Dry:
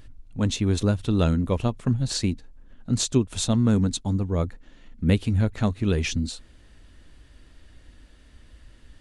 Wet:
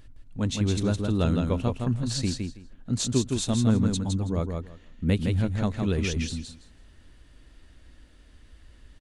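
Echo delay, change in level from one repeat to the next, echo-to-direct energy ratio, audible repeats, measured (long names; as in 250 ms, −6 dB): 163 ms, −15.5 dB, −4.5 dB, 2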